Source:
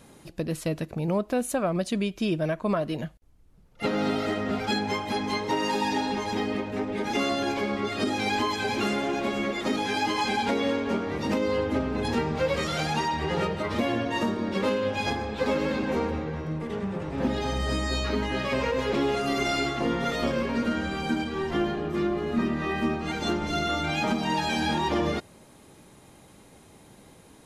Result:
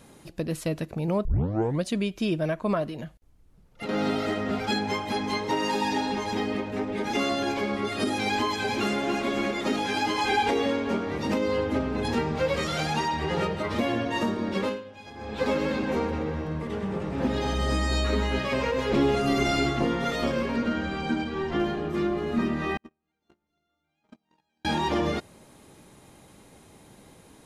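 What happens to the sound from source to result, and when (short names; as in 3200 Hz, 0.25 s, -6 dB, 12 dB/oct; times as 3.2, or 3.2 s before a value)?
1.25 tape start 0.59 s
2.85–3.89 compressor, threshold -31 dBFS
7.74–8.19 bell 10000 Hz +10 dB 0.28 oct
8.78–9.22 echo throw 0.29 s, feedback 65%, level -7.5 dB
10.24–10.66 comb 2.5 ms, depth 66%
14.59–15.38 dip -17 dB, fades 0.25 s
16–18.39 split-band echo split 850 Hz, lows 0.198 s, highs 0.128 s, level -8 dB
18.91–19.85 low shelf 280 Hz +8 dB
20.56–21.6 air absorption 71 m
22.77–24.65 gate -21 dBFS, range -51 dB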